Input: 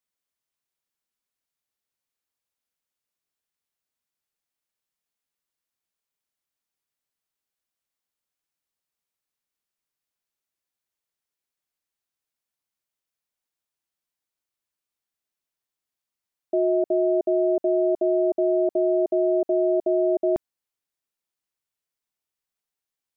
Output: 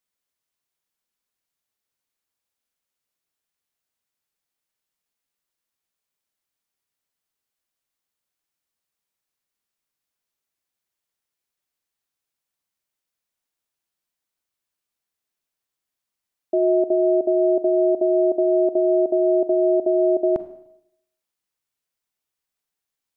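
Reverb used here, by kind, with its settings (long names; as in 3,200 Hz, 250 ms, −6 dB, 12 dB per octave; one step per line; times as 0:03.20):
four-comb reverb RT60 0.77 s, combs from 33 ms, DRR 11 dB
level +2.5 dB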